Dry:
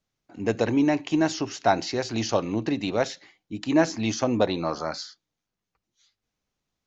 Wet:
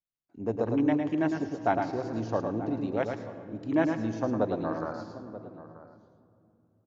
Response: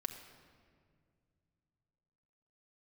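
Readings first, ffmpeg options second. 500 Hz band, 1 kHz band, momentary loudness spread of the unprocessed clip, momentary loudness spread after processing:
-4.0 dB, -4.0 dB, 10 LU, 15 LU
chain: -filter_complex "[0:a]afwtdn=0.0251,asplit=2[s0][s1];[s1]adelay=932.9,volume=0.178,highshelf=f=4000:g=-21[s2];[s0][s2]amix=inputs=2:normalize=0,asplit=2[s3][s4];[1:a]atrim=start_sample=2205,asetrate=30870,aresample=44100,adelay=107[s5];[s4][s5]afir=irnorm=-1:irlink=0,volume=0.531[s6];[s3][s6]amix=inputs=2:normalize=0,volume=0.531"

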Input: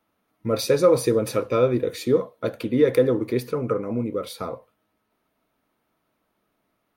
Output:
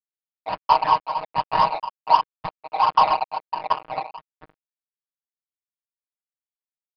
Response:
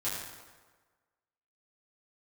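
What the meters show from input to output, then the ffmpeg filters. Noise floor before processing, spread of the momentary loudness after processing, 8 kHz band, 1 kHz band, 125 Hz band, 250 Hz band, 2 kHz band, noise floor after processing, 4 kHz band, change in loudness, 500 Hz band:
-74 dBFS, 14 LU, under -20 dB, +16.5 dB, -14.0 dB, -19.5 dB, +2.0 dB, under -85 dBFS, +2.5 dB, +0.5 dB, -13.0 dB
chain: -filter_complex "[0:a]afftfilt=real='real(if(lt(b,1008),b+24*(1-2*mod(floor(b/24),2)),b),0)':imag='imag(if(lt(b,1008),b+24*(1-2*mod(floor(b/24),2)),b),0)':win_size=2048:overlap=0.75,highpass=f=81:w=0.5412,highpass=f=81:w=1.3066,highshelf=f=1600:t=q:w=3:g=-8.5,afftfilt=real='hypot(re,im)*cos(2*PI*random(0))':imag='hypot(re,im)*sin(2*PI*random(1))':win_size=512:overlap=0.75,aresample=16000,aeval=exprs='sgn(val(0))*max(abs(val(0))-0.0335,0)':c=same,aresample=44100,adynamicsmooth=sensitivity=5:basefreq=1200,asplit=2[s0][s1];[s1]aeval=exprs='0.119*(abs(mod(val(0)/0.119+3,4)-2)-1)':c=same,volume=0.631[s2];[s0][s2]amix=inputs=2:normalize=0,tremolo=f=1.3:d=0.74,aresample=11025,aresample=44100,aecho=1:1:6.4:0.78,volume=1.68"

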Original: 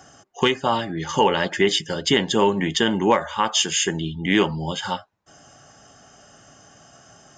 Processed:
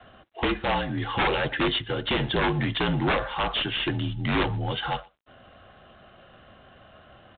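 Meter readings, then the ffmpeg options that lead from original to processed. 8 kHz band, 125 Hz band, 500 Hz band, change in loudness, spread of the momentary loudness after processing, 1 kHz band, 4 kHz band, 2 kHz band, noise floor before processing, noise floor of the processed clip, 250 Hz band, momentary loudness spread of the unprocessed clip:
under -40 dB, +1.0 dB, -7.5 dB, -5.0 dB, 5 LU, -5.0 dB, -5.5 dB, -2.5 dB, -52 dBFS, -54 dBFS, -5.5 dB, 7 LU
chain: -filter_complex "[0:a]adynamicequalizer=threshold=0.0282:dfrequency=350:dqfactor=2.6:tfrequency=350:tqfactor=2.6:attack=5:release=100:ratio=0.375:range=1.5:mode=cutabove:tftype=bell,aeval=exprs='(mod(3.76*val(0)+1,2)-1)/3.76':c=same,asplit=2[s0][s1];[s1]adelay=120,highpass=300,lowpass=3400,asoftclip=type=hard:threshold=0.0944,volume=0.0562[s2];[s0][s2]amix=inputs=2:normalize=0,aeval=exprs='(tanh(7.94*val(0)+0.1)-tanh(0.1))/7.94':c=same,afreqshift=-48" -ar 8000 -c:a adpcm_g726 -b:a 24k

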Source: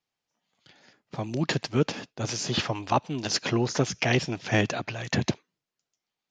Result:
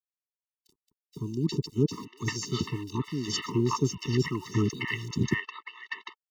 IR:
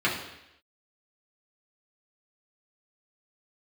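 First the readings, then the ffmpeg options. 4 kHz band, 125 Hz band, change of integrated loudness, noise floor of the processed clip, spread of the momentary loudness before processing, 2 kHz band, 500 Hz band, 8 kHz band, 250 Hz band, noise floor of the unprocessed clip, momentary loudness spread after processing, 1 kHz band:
-5.0 dB, 0.0 dB, -2.5 dB, under -85 dBFS, 8 LU, -4.5 dB, -4.0 dB, -4.5 dB, 0.0 dB, under -85 dBFS, 12 LU, -6.5 dB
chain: -filter_complex "[0:a]aeval=exprs='val(0)*gte(abs(val(0)),0.00473)':c=same,acrossover=split=750|3500[s0][s1][s2];[s0]adelay=30[s3];[s1]adelay=790[s4];[s3][s4][s2]amix=inputs=3:normalize=0,afftfilt=real='re*eq(mod(floor(b*sr/1024/440),2),0)':imag='im*eq(mod(floor(b*sr/1024/440),2),0)':win_size=1024:overlap=0.75"

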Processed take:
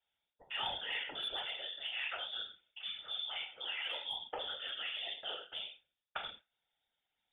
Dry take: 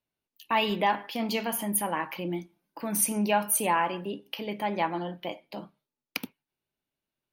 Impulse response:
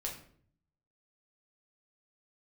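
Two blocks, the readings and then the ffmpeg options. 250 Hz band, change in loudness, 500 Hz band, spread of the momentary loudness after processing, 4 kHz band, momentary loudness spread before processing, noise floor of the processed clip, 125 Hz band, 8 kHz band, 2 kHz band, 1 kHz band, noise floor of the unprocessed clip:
-33.0 dB, -10.5 dB, -19.0 dB, 7 LU, +1.5 dB, 14 LU, under -85 dBFS, under -25 dB, under -40 dB, -7.5 dB, -18.5 dB, under -85 dBFS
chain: -filter_complex "[0:a]asuperstop=centerf=2600:order=4:qfactor=7,areverse,acompressor=threshold=0.0126:ratio=10,areverse,lowpass=f=3100:t=q:w=0.5098,lowpass=f=3100:t=q:w=0.6013,lowpass=f=3100:t=q:w=0.9,lowpass=f=3100:t=q:w=2.563,afreqshift=-3700[s0];[1:a]atrim=start_sample=2205,atrim=end_sample=6174[s1];[s0][s1]afir=irnorm=-1:irlink=0,acrossover=split=280|2400[s2][s3][s4];[s4]volume=63.1,asoftclip=hard,volume=0.0158[s5];[s2][s3][s5]amix=inputs=3:normalize=0,acrossover=split=2900[s6][s7];[s7]acompressor=threshold=0.00447:ratio=4:attack=1:release=60[s8];[s6][s8]amix=inputs=2:normalize=0,afftfilt=real='hypot(re,im)*cos(2*PI*random(0))':imag='hypot(re,im)*sin(2*PI*random(1))':win_size=512:overlap=0.75,highshelf=f=2100:g=-7.5,volume=5.01"

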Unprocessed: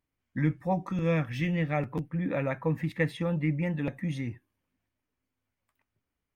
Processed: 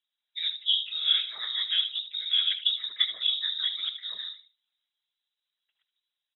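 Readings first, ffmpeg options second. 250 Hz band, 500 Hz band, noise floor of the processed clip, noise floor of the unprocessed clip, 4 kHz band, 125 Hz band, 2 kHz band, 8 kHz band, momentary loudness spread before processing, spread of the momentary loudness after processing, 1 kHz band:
under -40 dB, under -30 dB, under -85 dBFS, under -85 dBFS, +27.5 dB, under -40 dB, -4.0 dB, no reading, 6 LU, 10 LU, under -15 dB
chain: -filter_complex "[0:a]equalizer=f=590:w=1.3:g=13,asplit=2[s0][s1];[s1]adelay=76,lowpass=f=1900:p=1,volume=0.316,asplit=2[s2][s3];[s3]adelay=76,lowpass=f=1900:p=1,volume=0.27,asplit=2[s4][s5];[s5]adelay=76,lowpass=f=1900:p=1,volume=0.27[s6];[s0][s2][s4][s6]amix=inputs=4:normalize=0,lowpass=f=3300:t=q:w=0.5098,lowpass=f=3300:t=q:w=0.6013,lowpass=f=3300:t=q:w=0.9,lowpass=f=3300:t=q:w=2.563,afreqshift=-3900,afftfilt=real='hypot(re,im)*cos(2*PI*random(0))':imag='hypot(re,im)*sin(2*PI*random(1))':win_size=512:overlap=0.75"

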